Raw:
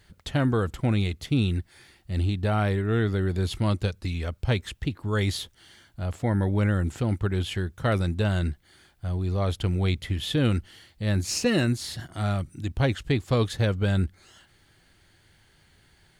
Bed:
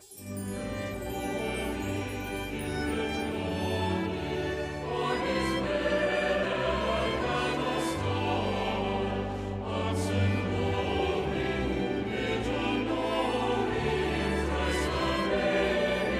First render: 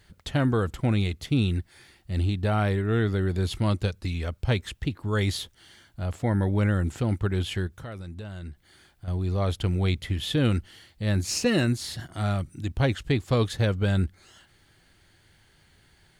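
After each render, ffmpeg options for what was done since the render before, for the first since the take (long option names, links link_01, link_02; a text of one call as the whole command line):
ffmpeg -i in.wav -filter_complex "[0:a]asettb=1/sr,asplit=3[link_01][link_02][link_03];[link_01]atrim=end=7.674[link_04];[link_02]atrim=start=7.67:end=9.08,asetpts=PTS-STARTPTS,afade=type=in:duration=0.004:curve=qsin,afade=type=out:start_time=1.406:duration=0.004:curve=qsin,acompressor=threshold=-39dB:ratio=3:attack=3.2:release=140:knee=1:detection=peak[link_05];[link_03]atrim=start=9.076[link_06];[link_04][link_05]acrossfade=duration=0.004:curve1=hsin:curve2=qsin[link_07];[link_07][link_06]acrossfade=duration=0.004:curve1=qsin:curve2=hsin" out.wav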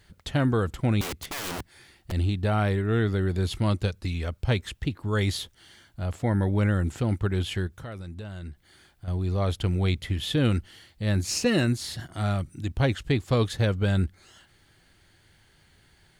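ffmpeg -i in.wav -filter_complex "[0:a]asettb=1/sr,asplit=3[link_01][link_02][link_03];[link_01]atrim=end=1.014[link_04];[link_02]atrim=start=1.01:end=2.12,asetpts=PTS-STARTPTS,afade=type=in:duration=0.004:curve=qsin,afade=type=out:start_time=1.106:duration=0.004:curve=qsin,aeval=exprs='(mod(26.6*val(0)+1,2)-1)/26.6':channel_layout=same[link_05];[link_03]atrim=start=2.116[link_06];[link_04][link_05]acrossfade=duration=0.004:curve1=hsin:curve2=qsin[link_07];[link_07][link_06]acrossfade=duration=0.004:curve1=qsin:curve2=hsin" out.wav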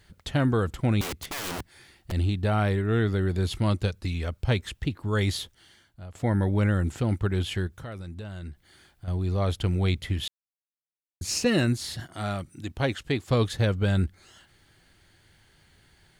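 ffmpeg -i in.wav -filter_complex "[0:a]asettb=1/sr,asplit=3[link_01][link_02][link_03];[link_01]atrim=end=12.044[link_04];[link_02]atrim=start=12.04:end=13.28,asetpts=PTS-STARTPTS,afade=type=in:duration=0.004:curve=qsin,afade=type=out:start_time=1.236:duration=0.004:curve=qsin,lowshelf=frequency=120:gain=-12[link_05];[link_03]atrim=start=13.276[link_06];[link_04][link_05]acrossfade=duration=0.004:curve1=hsin:curve2=qsin[link_07];[link_07][link_06]acrossfade=duration=0.004:curve1=qsin:curve2=hsin,asplit=4[link_08][link_09][link_10][link_11];[link_08]atrim=end=6.15,asetpts=PTS-STARTPTS,afade=type=out:start_time=5.38:duration=0.77:silence=0.158489[link_12];[link_09]atrim=start=6.15:end=10.28,asetpts=PTS-STARTPTS,afade=type=in:duration=0.004:curve=hsin:silence=0.158489,afade=type=out:start_time=4.126:duration=0.004:curve=hsin[link_13];[link_10]atrim=start=10.28:end=11.21,asetpts=PTS-STARTPTS,volume=0[link_14];[link_11]atrim=start=11.21,asetpts=PTS-STARTPTS,afade=type=in:duration=0.004:curve=hsin[link_15];[link_12][link_13][link_14][link_15]concat=n=4:v=0:a=1" out.wav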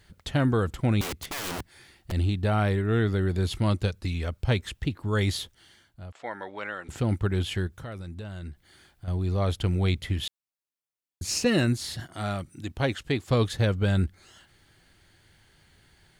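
ffmpeg -i in.wav -filter_complex "[0:a]asettb=1/sr,asplit=3[link_01][link_02][link_03];[link_01]atrim=end=6.124[link_04];[link_02]atrim=start=6.12:end=6.89,asetpts=PTS-STARTPTS,afade=type=in:duration=0.004:curve=qsin,afade=type=out:start_time=0.766:duration=0.004:curve=qsin,highpass=720,lowpass=4200[link_05];[link_03]atrim=start=6.886[link_06];[link_04][link_05]acrossfade=duration=0.004:curve1=hsin:curve2=qsin[link_07];[link_07][link_06]acrossfade=duration=0.004:curve1=qsin:curve2=hsin" out.wav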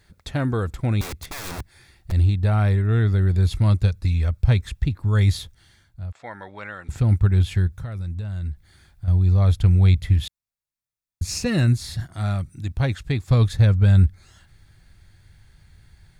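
ffmpeg -i in.wav -af "bandreject=frequency=3000:width=8.1,asubboost=boost=5:cutoff=140" out.wav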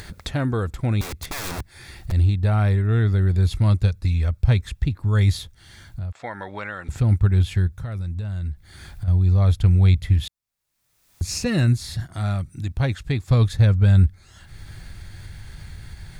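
ffmpeg -i in.wav -af "acompressor=mode=upward:threshold=-24dB:ratio=2.5" out.wav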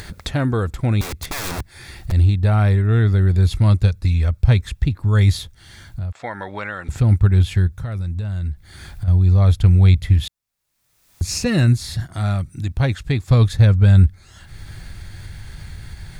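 ffmpeg -i in.wav -af "volume=3.5dB" out.wav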